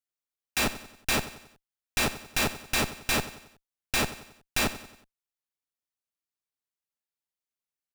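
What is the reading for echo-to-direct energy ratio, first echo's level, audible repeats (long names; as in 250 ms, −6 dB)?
−13.5 dB, −14.5 dB, 4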